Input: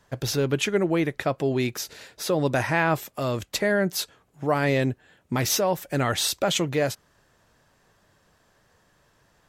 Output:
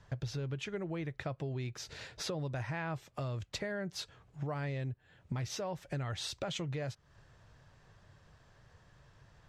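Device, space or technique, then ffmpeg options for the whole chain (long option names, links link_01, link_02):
jukebox: -af "lowpass=5900,lowshelf=frequency=170:width_type=q:width=1.5:gain=8,acompressor=threshold=-35dB:ratio=5,volume=-2dB"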